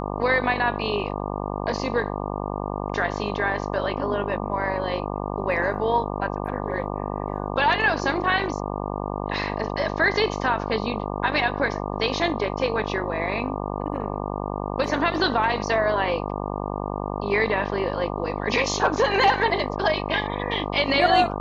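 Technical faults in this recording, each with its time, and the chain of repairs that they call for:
buzz 50 Hz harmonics 24 -29 dBFS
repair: de-hum 50 Hz, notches 24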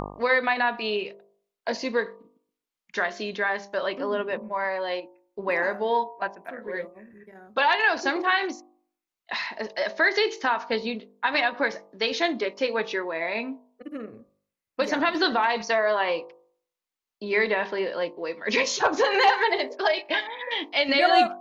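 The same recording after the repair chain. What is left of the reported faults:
nothing left

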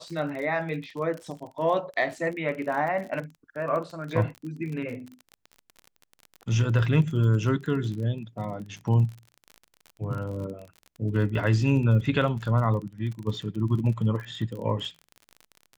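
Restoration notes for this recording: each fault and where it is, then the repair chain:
crackle 34 per s -34 dBFS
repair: de-click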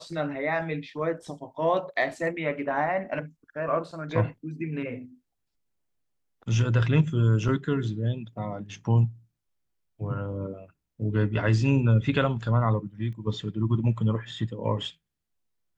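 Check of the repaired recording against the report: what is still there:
nothing left

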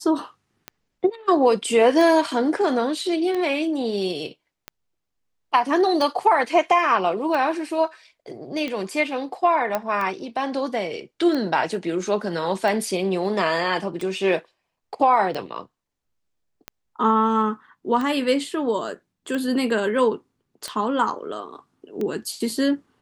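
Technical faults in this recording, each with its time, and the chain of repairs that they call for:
tick 45 rpm -16 dBFS
9.75 s: pop -10 dBFS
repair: de-click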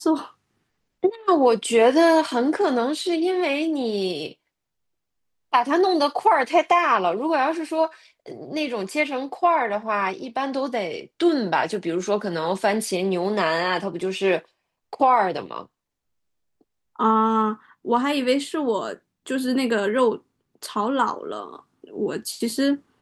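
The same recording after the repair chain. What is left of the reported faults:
nothing left

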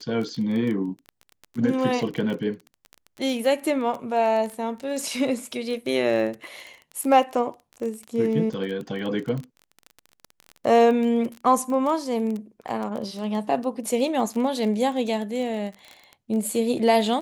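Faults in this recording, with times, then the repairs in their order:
crackle 23 per s -29 dBFS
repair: de-click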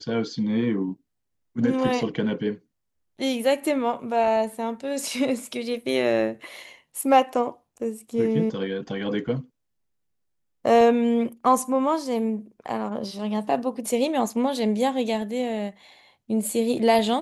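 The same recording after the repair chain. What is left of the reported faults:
nothing left

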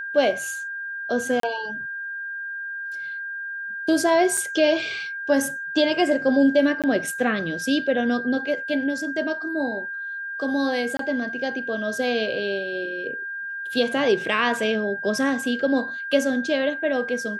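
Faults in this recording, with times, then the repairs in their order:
whine 1.6 kHz -29 dBFS
1.40–1.43 s: dropout 33 ms
4.37 s: dropout 4.9 ms
6.82–6.84 s: dropout 17 ms
10.97–10.99 s: dropout 23 ms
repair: band-stop 1.6 kHz, Q 30; interpolate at 1.40 s, 33 ms; interpolate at 4.37 s, 4.9 ms; interpolate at 6.82 s, 17 ms; interpolate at 10.97 s, 23 ms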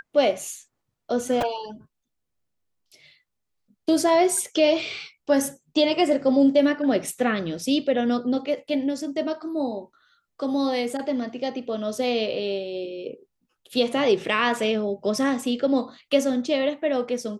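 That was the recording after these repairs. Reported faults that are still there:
nothing left

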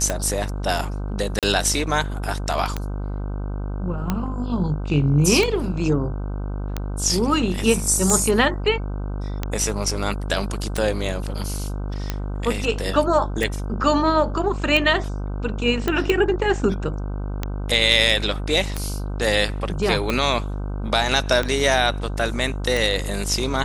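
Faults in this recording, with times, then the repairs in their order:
buzz 50 Hz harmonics 31 -27 dBFS
tick 45 rpm -9 dBFS
1.39–1.43 s: dropout 37 ms
15.88 s: pop -9 dBFS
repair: de-click; de-hum 50 Hz, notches 31; interpolate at 1.39 s, 37 ms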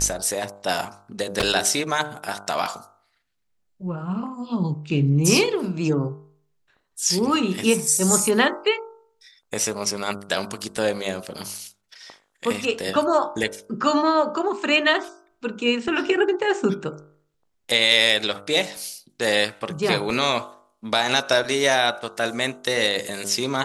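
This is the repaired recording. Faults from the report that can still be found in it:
nothing left

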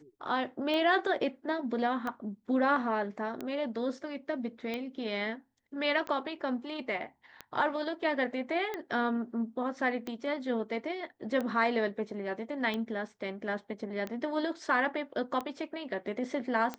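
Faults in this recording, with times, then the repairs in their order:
tick 45 rpm -22 dBFS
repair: de-click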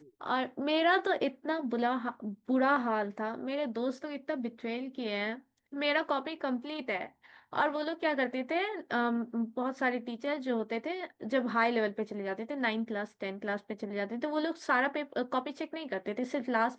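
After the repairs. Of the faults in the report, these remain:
nothing left

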